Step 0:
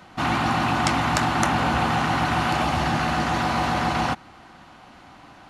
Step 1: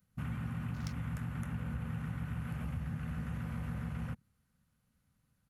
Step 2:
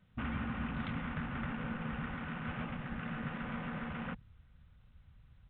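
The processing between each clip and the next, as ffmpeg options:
-af "afwtdn=0.0282,firequalizer=gain_entry='entry(130,0);entry(220,-6);entry(330,-24);entry(480,-11);entry(710,-28);entry(1400,-16);entry(3000,-17);entry(12000,11)':delay=0.05:min_phase=1,acompressor=threshold=0.0224:ratio=4,volume=0.75"
-af "asubboost=boost=7.5:cutoff=82,afftfilt=real='re*lt(hypot(re,im),0.0891)':imag='im*lt(hypot(re,im),0.0891)':win_size=1024:overlap=0.75,volume=2.37" -ar 8000 -c:a pcm_mulaw

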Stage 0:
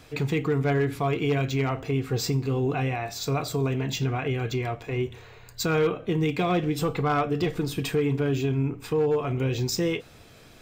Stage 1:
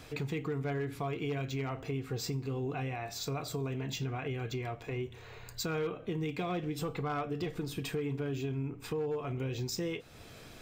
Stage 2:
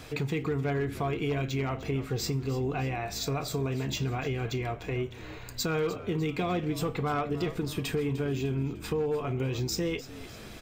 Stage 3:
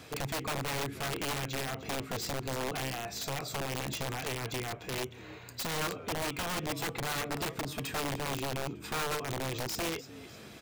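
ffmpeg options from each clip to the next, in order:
-af "acompressor=threshold=0.00891:ratio=2"
-filter_complex "[0:a]asplit=5[s0][s1][s2][s3][s4];[s1]adelay=301,afreqshift=-63,volume=0.168[s5];[s2]adelay=602,afreqshift=-126,volume=0.0785[s6];[s3]adelay=903,afreqshift=-189,volume=0.0372[s7];[s4]adelay=1204,afreqshift=-252,volume=0.0174[s8];[s0][s5][s6][s7][s8]amix=inputs=5:normalize=0,volume=1.78"
-af "highpass=100,aeval=exprs='(mod(17.8*val(0)+1,2)-1)/17.8':c=same,volume=0.668"

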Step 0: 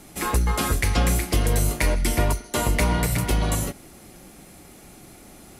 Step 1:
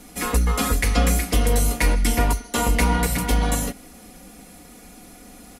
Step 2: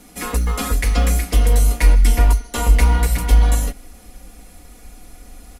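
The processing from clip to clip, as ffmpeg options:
-af "aecho=1:1:4.1:0.72"
-af "acrusher=bits=9:mode=log:mix=0:aa=0.000001,asubboost=boost=7:cutoff=66,volume=0.891"

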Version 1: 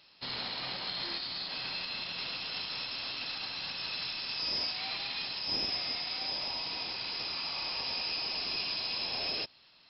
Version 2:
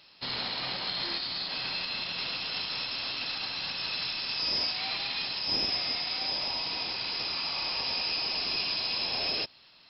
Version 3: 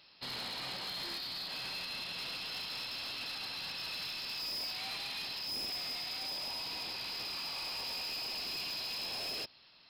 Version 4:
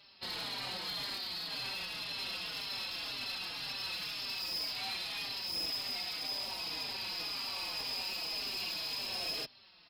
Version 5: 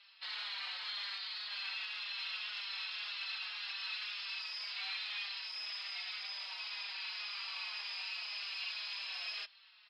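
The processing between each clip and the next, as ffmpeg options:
-af "acontrast=76,volume=0.708"
-af "asoftclip=type=tanh:threshold=0.0266,volume=0.631"
-filter_complex "[0:a]asplit=2[s0][s1];[s1]adelay=4.5,afreqshift=-1.9[s2];[s0][s2]amix=inputs=2:normalize=1,volume=1.58"
-af "asuperpass=centerf=2200:order=4:qfactor=0.81,volume=1.12"

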